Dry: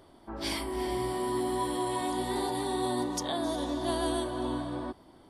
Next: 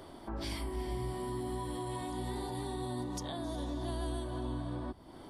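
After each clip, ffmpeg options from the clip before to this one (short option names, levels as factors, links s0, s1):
-filter_complex "[0:a]acrossover=split=160[s0][s1];[s1]acompressor=threshold=0.00316:ratio=2.5[s2];[s0][s2]amix=inputs=2:normalize=0,asplit=2[s3][s4];[s4]alimiter=level_in=5.01:limit=0.0631:level=0:latency=1:release=375,volume=0.2,volume=1.12[s5];[s3][s5]amix=inputs=2:normalize=0"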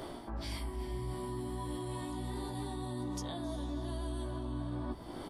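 -filter_complex "[0:a]areverse,acompressor=threshold=0.00501:ratio=5,areverse,asplit=2[s0][s1];[s1]adelay=17,volume=0.531[s2];[s0][s2]amix=inputs=2:normalize=0,volume=2.24"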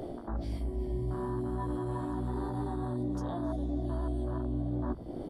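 -af "afwtdn=0.00891,volume=1.88"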